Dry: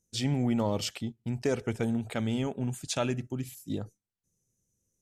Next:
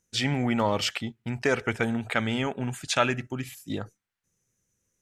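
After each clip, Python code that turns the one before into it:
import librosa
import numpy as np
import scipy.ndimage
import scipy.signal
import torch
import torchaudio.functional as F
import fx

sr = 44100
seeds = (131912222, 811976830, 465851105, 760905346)

y = fx.peak_eq(x, sr, hz=1700.0, db=14.0, octaves=2.2)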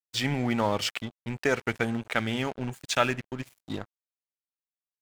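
y = np.sign(x) * np.maximum(np.abs(x) - 10.0 ** (-39.0 / 20.0), 0.0)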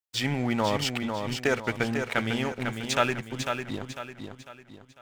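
y = fx.echo_feedback(x, sr, ms=499, feedback_pct=39, wet_db=-6)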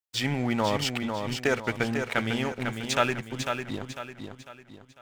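y = x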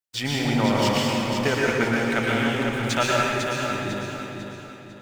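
y = fx.rev_plate(x, sr, seeds[0], rt60_s=2.0, hf_ratio=0.75, predelay_ms=100, drr_db=-4.0)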